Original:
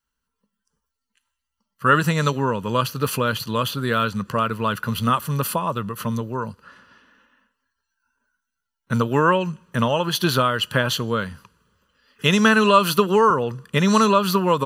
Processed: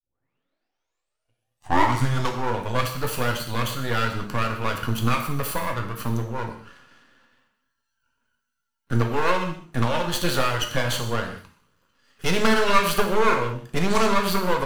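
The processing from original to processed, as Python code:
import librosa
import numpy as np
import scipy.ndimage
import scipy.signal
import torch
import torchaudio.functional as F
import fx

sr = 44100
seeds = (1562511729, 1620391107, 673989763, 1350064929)

y = fx.tape_start_head(x, sr, length_s=2.56)
y = np.maximum(y, 0.0)
y = fx.rev_gated(y, sr, seeds[0], gate_ms=240, shape='falling', drr_db=2.5)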